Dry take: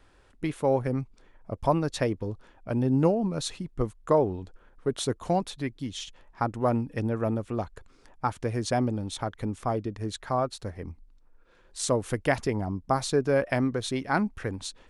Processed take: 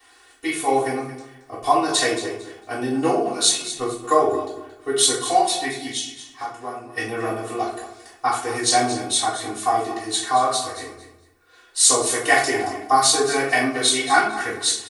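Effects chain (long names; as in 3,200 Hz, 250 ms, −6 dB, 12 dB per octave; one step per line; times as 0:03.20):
high-pass filter 280 Hz 6 dB per octave
spectral tilt +3.5 dB per octave
comb filter 2.7 ms, depth 98%
0:05.97–0:06.95: downward compressor 3 to 1, threshold −40 dBFS, peak gain reduction 14.5 dB
repeating echo 225 ms, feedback 22%, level −13 dB
convolution reverb RT60 0.60 s, pre-delay 3 ms, DRR −8 dB
level −7.5 dB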